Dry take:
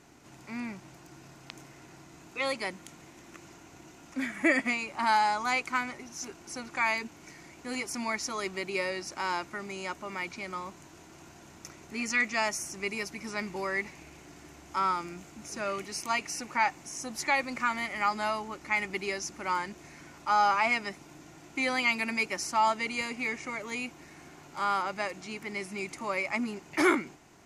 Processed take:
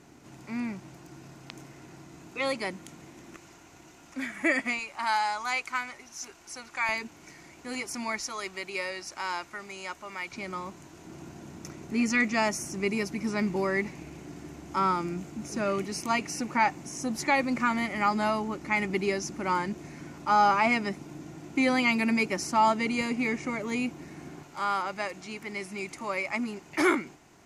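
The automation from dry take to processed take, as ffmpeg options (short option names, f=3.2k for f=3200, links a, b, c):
-af "asetnsamples=n=441:p=0,asendcmd='3.36 equalizer g -2.5;4.79 equalizer g -10;6.89 equalizer g -0.5;8.2 equalizer g -7;10.32 equalizer g 4.5;11.05 equalizer g 11;24.43 equalizer g 0.5',equalizer=f=190:t=o:w=2.9:g=5"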